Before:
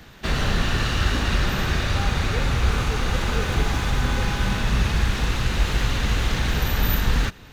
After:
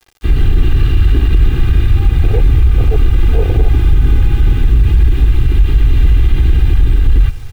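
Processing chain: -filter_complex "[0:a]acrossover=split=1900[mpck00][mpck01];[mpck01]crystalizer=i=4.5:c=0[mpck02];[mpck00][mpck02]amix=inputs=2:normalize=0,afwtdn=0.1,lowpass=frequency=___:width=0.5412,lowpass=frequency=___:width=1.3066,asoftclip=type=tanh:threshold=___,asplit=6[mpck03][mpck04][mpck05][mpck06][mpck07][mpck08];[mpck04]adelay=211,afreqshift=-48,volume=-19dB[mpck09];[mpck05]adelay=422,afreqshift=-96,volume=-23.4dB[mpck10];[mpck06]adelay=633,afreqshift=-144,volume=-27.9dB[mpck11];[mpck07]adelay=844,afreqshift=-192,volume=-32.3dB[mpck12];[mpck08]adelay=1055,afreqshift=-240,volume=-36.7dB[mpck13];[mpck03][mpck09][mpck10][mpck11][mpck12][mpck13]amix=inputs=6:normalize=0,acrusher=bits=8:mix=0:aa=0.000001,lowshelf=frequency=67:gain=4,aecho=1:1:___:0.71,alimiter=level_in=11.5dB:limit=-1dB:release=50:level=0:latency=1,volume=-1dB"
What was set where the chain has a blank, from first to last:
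3000, 3000, -15dB, 2.5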